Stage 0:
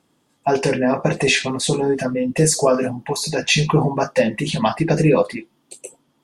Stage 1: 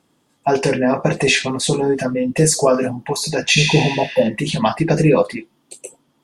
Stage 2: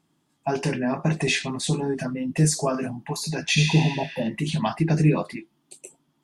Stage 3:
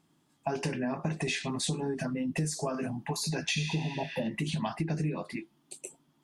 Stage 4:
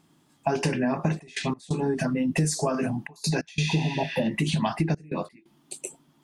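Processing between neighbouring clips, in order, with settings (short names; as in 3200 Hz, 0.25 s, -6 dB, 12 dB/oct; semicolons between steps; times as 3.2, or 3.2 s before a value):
spectral repair 3.59–4.23, 1000–10000 Hz both; gain +1.5 dB
wow and flutter 29 cents; thirty-one-band EQ 160 Hz +7 dB, 315 Hz +3 dB, 500 Hz -10 dB; gain -8 dB
compressor 6:1, threshold -29 dBFS, peak gain reduction 15 dB
step gate "xxxxxxx.x.x" 88 bpm -24 dB; gain +7 dB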